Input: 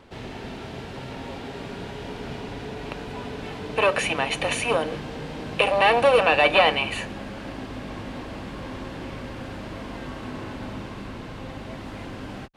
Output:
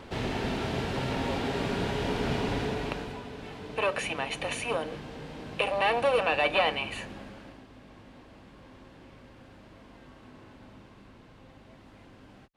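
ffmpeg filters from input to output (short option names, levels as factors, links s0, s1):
-af "volume=1.78,afade=t=out:st=2.55:d=0.67:silence=0.237137,afade=t=out:st=7.14:d=0.5:silence=0.354813"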